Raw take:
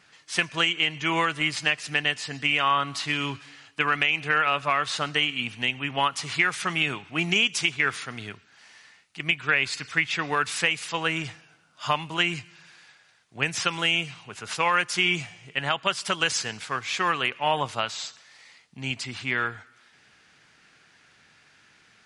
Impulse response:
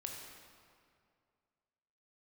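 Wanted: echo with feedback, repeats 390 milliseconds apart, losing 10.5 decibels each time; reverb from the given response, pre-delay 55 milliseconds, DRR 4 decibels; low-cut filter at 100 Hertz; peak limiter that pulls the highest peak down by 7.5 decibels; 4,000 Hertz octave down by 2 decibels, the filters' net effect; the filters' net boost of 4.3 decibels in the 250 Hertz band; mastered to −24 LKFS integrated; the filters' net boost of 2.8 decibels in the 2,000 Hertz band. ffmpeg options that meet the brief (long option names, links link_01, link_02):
-filter_complex "[0:a]highpass=100,equalizer=frequency=250:width_type=o:gain=6.5,equalizer=frequency=2000:width_type=o:gain=5.5,equalizer=frequency=4000:width_type=o:gain=-7,alimiter=limit=-13dB:level=0:latency=1,aecho=1:1:390|780|1170:0.299|0.0896|0.0269,asplit=2[link_01][link_02];[1:a]atrim=start_sample=2205,adelay=55[link_03];[link_02][link_03]afir=irnorm=-1:irlink=0,volume=-2.5dB[link_04];[link_01][link_04]amix=inputs=2:normalize=0,volume=0.5dB"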